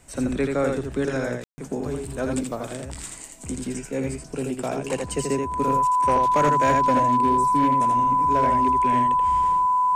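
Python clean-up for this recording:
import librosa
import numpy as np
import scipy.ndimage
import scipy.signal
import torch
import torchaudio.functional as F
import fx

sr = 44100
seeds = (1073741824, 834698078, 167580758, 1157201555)

y = fx.fix_declip(x, sr, threshold_db=-13.5)
y = fx.notch(y, sr, hz=1000.0, q=30.0)
y = fx.fix_ambience(y, sr, seeds[0], print_start_s=2.96, print_end_s=3.46, start_s=1.44, end_s=1.58)
y = fx.fix_echo_inverse(y, sr, delay_ms=82, level_db=-4.0)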